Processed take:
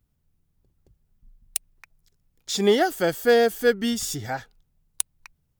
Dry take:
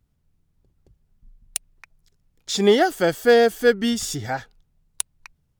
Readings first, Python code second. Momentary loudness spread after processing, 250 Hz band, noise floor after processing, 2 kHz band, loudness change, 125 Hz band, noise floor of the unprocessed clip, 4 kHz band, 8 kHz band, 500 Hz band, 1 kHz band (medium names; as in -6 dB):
12 LU, -3.0 dB, -72 dBFS, -3.0 dB, -2.5 dB, -3.0 dB, -69 dBFS, -2.5 dB, -0.5 dB, -3.0 dB, -3.0 dB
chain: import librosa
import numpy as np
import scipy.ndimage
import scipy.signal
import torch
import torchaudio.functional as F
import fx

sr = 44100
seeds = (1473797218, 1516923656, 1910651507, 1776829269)

y = fx.high_shelf(x, sr, hz=12000.0, db=10.0)
y = F.gain(torch.from_numpy(y), -3.0).numpy()